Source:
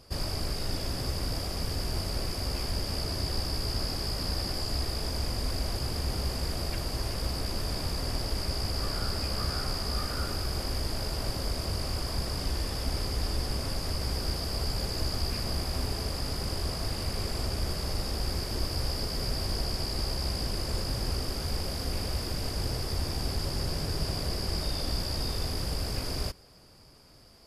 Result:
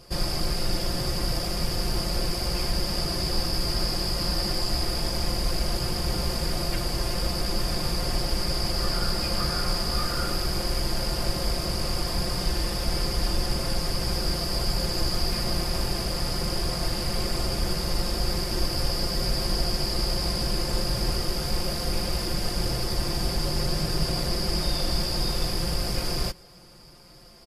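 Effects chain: comb 5.7 ms, depth 67%; gain +4 dB

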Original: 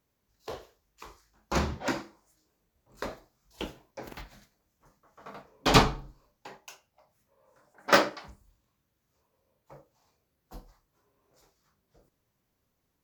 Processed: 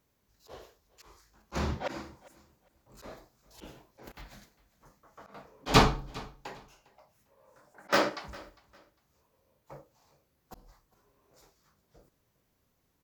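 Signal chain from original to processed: auto swell 0.189 s; feedback echo 0.403 s, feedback 23%, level -21.5 dB; gain +3 dB

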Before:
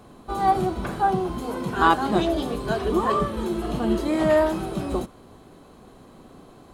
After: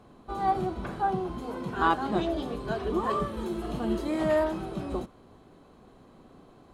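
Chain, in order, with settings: high shelf 7100 Hz -11 dB, from 3.04 s -2.5 dB, from 4.44 s -10.5 dB; gain -6 dB

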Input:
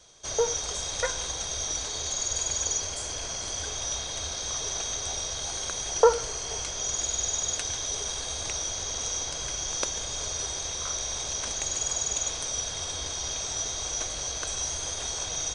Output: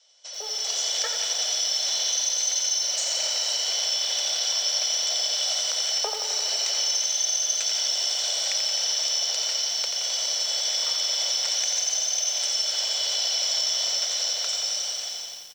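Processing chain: ending faded out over 1.97 s; steep high-pass 620 Hz 36 dB/oct; pitch shift -1.5 st; compressor 10:1, threshold -34 dBFS, peak gain reduction 14.5 dB; LPF 7800 Hz 24 dB/oct; high shelf 5600 Hz +3 dB; AGC gain up to 15.5 dB; bell 1100 Hz -10 dB 0.95 oct; lo-fi delay 87 ms, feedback 80%, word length 7-bit, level -6.5 dB; gain -5.5 dB

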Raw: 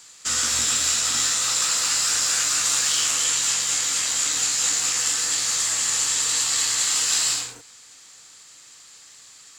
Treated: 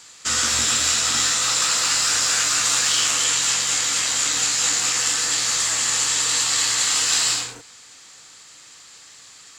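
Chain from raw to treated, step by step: high shelf 7100 Hz -8 dB; gain +5 dB

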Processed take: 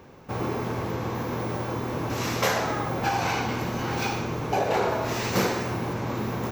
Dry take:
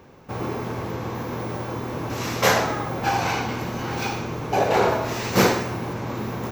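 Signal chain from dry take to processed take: compressor 3:1, threshold -22 dBFS, peak gain reduction 7.5 dB

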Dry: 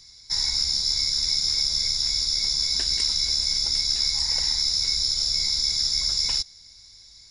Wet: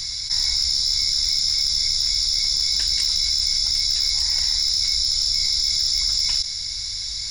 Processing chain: bell 420 Hz -14 dB 1.9 oct; overloaded stage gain 16 dB; fast leveller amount 70%; gain +2 dB

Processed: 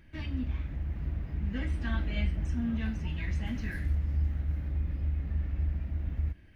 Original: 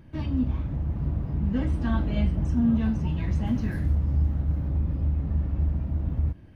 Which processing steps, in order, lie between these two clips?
graphic EQ 125/250/500/1000/2000 Hz -10/-5/-5/-8/+8 dB; gain -2 dB

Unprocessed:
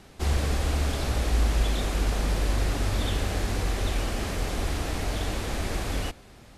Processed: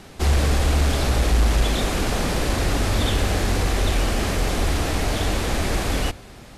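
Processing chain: notches 50/100 Hz; soft clip -17 dBFS, distortion -23 dB; gain +8 dB

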